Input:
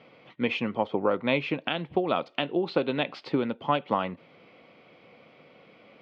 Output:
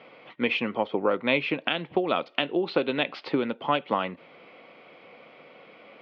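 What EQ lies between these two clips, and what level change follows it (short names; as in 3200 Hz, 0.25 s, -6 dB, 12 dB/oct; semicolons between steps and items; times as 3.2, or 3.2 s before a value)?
HPF 480 Hz 6 dB/oct; dynamic EQ 870 Hz, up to -6 dB, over -39 dBFS, Q 0.76; air absorption 160 m; +7.5 dB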